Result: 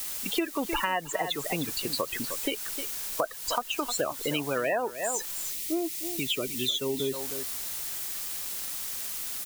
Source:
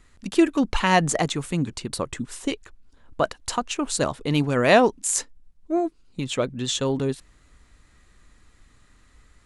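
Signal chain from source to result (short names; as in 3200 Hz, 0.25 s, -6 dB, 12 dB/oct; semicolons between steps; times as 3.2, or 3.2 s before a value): loudest bins only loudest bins 32; three-band isolator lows -15 dB, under 390 Hz, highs -16 dB, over 5000 Hz; in parallel at -10.5 dB: requantised 6-bit, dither triangular; on the sum: high shelf 4000 Hz +9.5 dB; on a send: echo 0.307 s -14.5 dB; on the sum: spectral gain 5.51–7.14, 440–1800 Hz -12 dB; compressor 8:1, threshold -29 dBFS, peak gain reduction 18 dB; gain +3.5 dB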